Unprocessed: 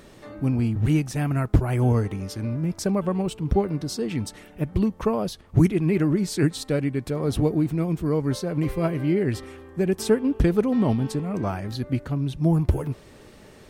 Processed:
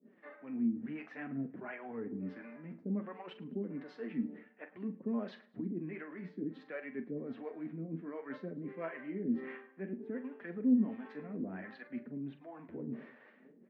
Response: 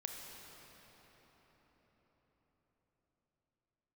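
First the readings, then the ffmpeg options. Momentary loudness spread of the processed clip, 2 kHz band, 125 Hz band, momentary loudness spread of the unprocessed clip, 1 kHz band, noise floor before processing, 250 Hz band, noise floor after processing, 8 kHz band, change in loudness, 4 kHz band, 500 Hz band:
12 LU, −11.0 dB, −25.5 dB, 8 LU, −18.0 dB, −49 dBFS, −13.0 dB, −62 dBFS, below −40 dB, −15.5 dB, below −20 dB, −18.0 dB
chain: -filter_complex "[0:a]agate=range=-33dB:threshold=-38dB:ratio=3:detection=peak,alimiter=limit=-15.5dB:level=0:latency=1:release=27,areverse,acompressor=threshold=-40dB:ratio=4,areverse,acrossover=split=480[link_01][link_02];[link_01]aeval=exprs='val(0)*(1-1/2+1/2*cos(2*PI*1.4*n/s))':channel_layout=same[link_03];[link_02]aeval=exprs='val(0)*(1-1/2-1/2*cos(2*PI*1.4*n/s))':channel_layout=same[link_04];[link_03][link_04]amix=inputs=2:normalize=0,flanger=delay=4.8:depth=8.4:regen=33:speed=0.58:shape=sinusoidal,highpass=frequency=230:width=0.5412,highpass=frequency=230:width=1.3066,equalizer=frequency=240:width_type=q:width=4:gain=8,equalizer=frequency=360:width_type=q:width=4:gain=-7,equalizer=frequency=580:width_type=q:width=4:gain=-4,equalizer=frequency=850:width_type=q:width=4:gain=-6,equalizer=frequency=1200:width_type=q:width=4:gain=-4,equalizer=frequency=1800:width_type=q:width=4:gain=6,lowpass=frequency=2200:width=0.5412,lowpass=frequency=2200:width=1.3066,asplit=2[link_05][link_06];[link_06]adelay=43,volume=-11.5dB[link_07];[link_05][link_07]amix=inputs=2:normalize=0,asplit=2[link_08][link_09];[link_09]aecho=0:1:107|214|321:0.0841|0.0337|0.0135[link_10];[link_08][link_10]amix=inputs=2:normalize=0,volume=11.5dB"

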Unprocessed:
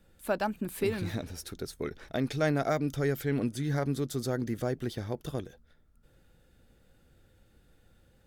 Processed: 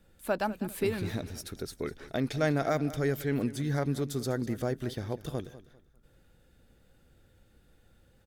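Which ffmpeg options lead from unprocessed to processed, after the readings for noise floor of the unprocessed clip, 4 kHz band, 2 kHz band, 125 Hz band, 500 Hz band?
−64 dBFS, 0.0 dB, 0.0 dB, 0.0 dB, 0.0 dB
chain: -af "aecho=1:1:199|398|597:0.158|0.046|0.0133"

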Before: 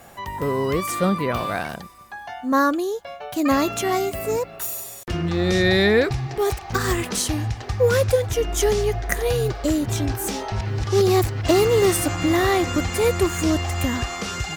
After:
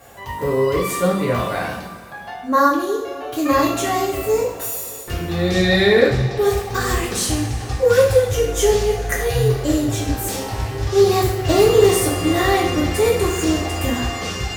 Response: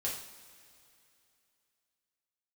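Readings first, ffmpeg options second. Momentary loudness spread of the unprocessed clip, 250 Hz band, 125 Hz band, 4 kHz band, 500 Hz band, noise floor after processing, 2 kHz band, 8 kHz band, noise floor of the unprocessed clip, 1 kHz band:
10 LU, +1.5 dB, +2.0 dB, +3.0 dB, +4.0 dB, −33 dBFS, +2.5 dB, +2.5 dB, −39 dBFS, +3.5 dB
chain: -filter_complex "[1:a]atrim=start_sample=2205[link_01];[0:a][link_01]afir=irnorm=-1:irlink=0"

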